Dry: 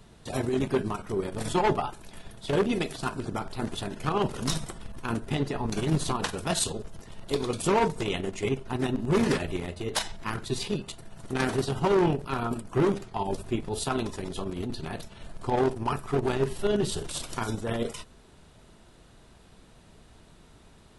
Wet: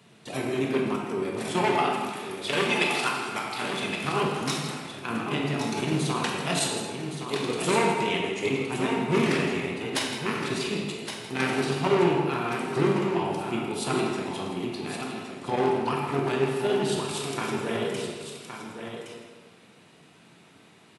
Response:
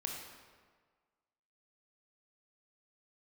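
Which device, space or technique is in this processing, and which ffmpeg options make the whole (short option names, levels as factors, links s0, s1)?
PA in a hall: -filter_complex "[0:a]asettb=1/sr,asplit=3[s0][s1][s2];[s0]atrim=end=1.704[s3];[s1]atrim=start=1.7:end=3.68,asetpts=PTS-STARTPTS,afade=t=in:d=0.004:c=qsin,afade=t=out:st=1.976:d=0.004:c=qsin,tiltshelf=f=640:g=-7.5[s4];[s2]atrim=start=3.676[s5];[s3][s4]acrossfade=d=0.004:c1=hsin:c2=qsin[s6];[s6][s5]acrossfade=d=0.004:c1=qsin:c2=hsin,highpass=f=130:w=0.5412,highpass=f=130:w=1.3066,equalizer=f=2400:t=o:w=0.79:g=7,aecho=1:1:161:0.251,aecho=1:1:1117:0.398[s7];[1:a]atrim=start_sample=2205[s8];[s7][s8]afir=irnorm=-1:irlink=0"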